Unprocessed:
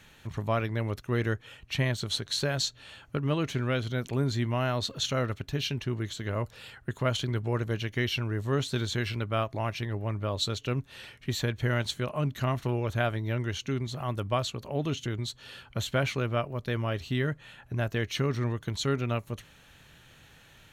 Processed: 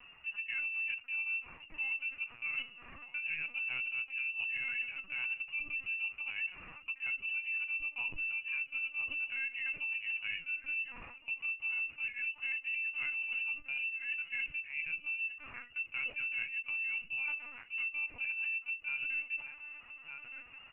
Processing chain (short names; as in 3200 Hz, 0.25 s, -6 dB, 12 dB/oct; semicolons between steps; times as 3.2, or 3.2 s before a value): inverted band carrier 2800 Hz; bell 440 Hz -14.5 dB 2.3 oct; outdoor echo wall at 210 m, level -15 dB; dynamic EQ 1300 Hz, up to -6 dB, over -50 dBFS, Q 3.1; reverb RT60 0.35 s, pre-delay 4 ms, DRR 5.5 dB; LPC vocoder at 8 kHz pitch kept; reverse; compressor 6:1, threshold -37 dBFS, peak gain reduction 14.5 dB; reverse; gain +1.5 dB